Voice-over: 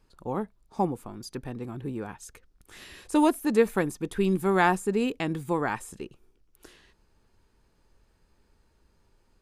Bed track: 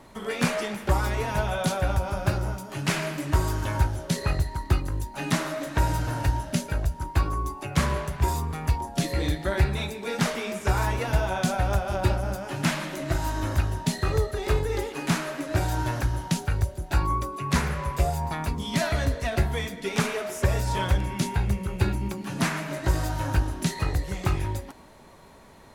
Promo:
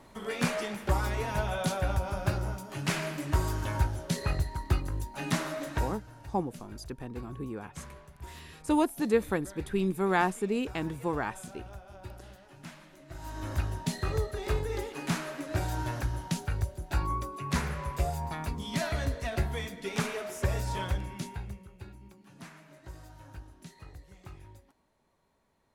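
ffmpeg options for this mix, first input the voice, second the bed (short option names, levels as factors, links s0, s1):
-filter_complex "[0:a]adelay=5550,volume=0.631[s0];[1:a]volume=3.55,afade=t=out:st=5.71:d=0.29:silence=0.141254,afade=t=in:st=13.09:d=0.54:silence=0.16788,afade=t=out:st=20.64:d=1.08:silence=0.149624[s1];[s0][s1]amix=inputs=2:normalize=0"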